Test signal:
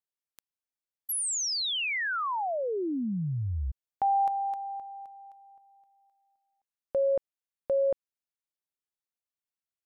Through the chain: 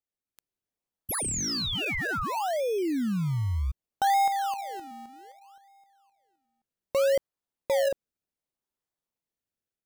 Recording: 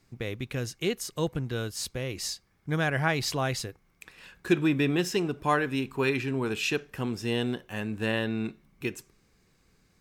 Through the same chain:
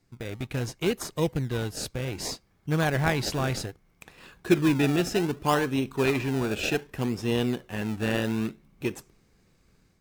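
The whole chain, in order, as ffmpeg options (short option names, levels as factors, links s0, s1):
-filter_complex "[0:a]dynaudnorm=f=230:g=3:m=1.88,asplit=2[s0][s1];[s1]acrusher=samples=29:mix=1:aa=0.000001:lfo=1:lforange=29:lforate=0.65,volume=0.631[s2];[s0][s2]amix=inputs=2:normalize=0,volume=0.473"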